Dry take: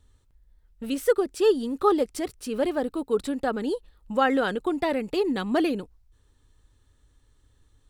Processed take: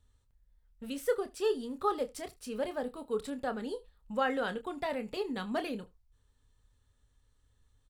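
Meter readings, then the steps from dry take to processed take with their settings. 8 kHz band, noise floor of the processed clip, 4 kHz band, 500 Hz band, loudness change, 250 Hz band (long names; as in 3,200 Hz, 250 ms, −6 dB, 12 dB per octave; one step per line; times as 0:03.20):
−7.5 dB, −71 dBFS, −7.5 dB, −9.0 dB, −9.5 dB, −11.5 dB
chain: parametric band 330 Hz −15 dB 0.22 octaves
double-tracking delay 28 ms −10 dB
single-tap delay 76 ms −23 dB
level −8 dB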